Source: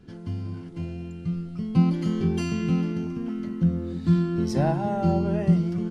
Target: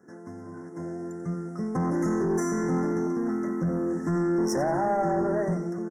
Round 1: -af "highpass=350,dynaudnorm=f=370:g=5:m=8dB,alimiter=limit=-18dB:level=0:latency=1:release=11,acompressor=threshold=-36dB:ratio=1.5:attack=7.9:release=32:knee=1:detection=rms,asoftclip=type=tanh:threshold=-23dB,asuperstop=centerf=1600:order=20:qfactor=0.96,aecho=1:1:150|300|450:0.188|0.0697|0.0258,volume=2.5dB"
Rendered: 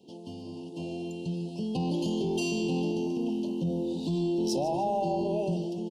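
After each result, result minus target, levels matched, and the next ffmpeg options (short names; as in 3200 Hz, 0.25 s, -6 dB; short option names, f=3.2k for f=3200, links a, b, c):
echo 60 ms late; 4000 Hz band +13.0 dB; compressor: peak gain reduction +5 dB
-af "highpass=350,dynaudnorm=f=370:g=5:m=8dB,alimiter=limit=-18dB:level=0:latency=1:release=11,acompressor=threshold=-36dB:ratio=1.5:attack=7.9:release=32:knee=1:detection=rms,asoftclip=type=tanh:threshold=-23dB,asuperstop=centerf=1600:order=20:qfactor=0.96,aecho=1:1:90|180|270:0.188|0.0697|0.0258,volume=2.5dB"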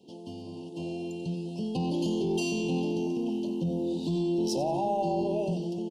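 4000 Hz band +12.5 dB; compressor: peak gain reduction +5 dB
-af "highpass=350,dynaudnorm=f=370:g=5:m=8dB,alimiter=limit=-18dB:level=0:latency=1:release=11,acompressor=threshold=-36dB:ratio=1.5:attack=7.9:release=32:knee=1:detection=rms,asoftclip=type=tanh:threshold=-23dB,asuperstop=centerf=3300:order=20:qfactor=0.96,aecho=1:1:90|180|270:0.188|0.0697|0.0258,volume=2.5dB"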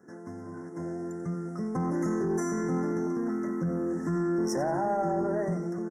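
compressor: peak gain reduction +5 dB
-af "highpass=350,dynaudnorm=f=370:g=5:m=8dB,alimiter=limit=-18dB:level=0:latency=1:release=11,asoftclip=type=tanh:threshold=-23dB,asuperstop=centerf=3300:order=20:qfactor=0.96,aecho=1:1:90|180|270:0.188|0.0697|0.0258,volume=2.5dB"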